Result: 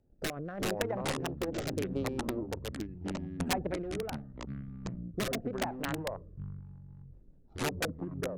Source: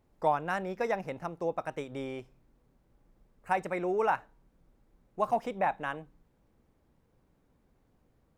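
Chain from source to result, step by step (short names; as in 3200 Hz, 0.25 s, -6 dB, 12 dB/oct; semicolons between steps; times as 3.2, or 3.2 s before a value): Wiener smoothing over 41 samples; treble ducked by the level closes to 960 Hz, closed at -27.5 dBFS; high shelf 2900 Hz +8 dB; in parallel at -0.5 dB: negative-ratio compressor -37 dBFS, ratio -0.5; on the sum: transient shaper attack +11 dB, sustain +7 dB; wrapped overs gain 14 dB; echoes that change speed 0.285 s, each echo -6 st, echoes 3; rotary speaker horn 0.8 Hz, later 6.3 Hz, at 6.32; gain -7.5 dB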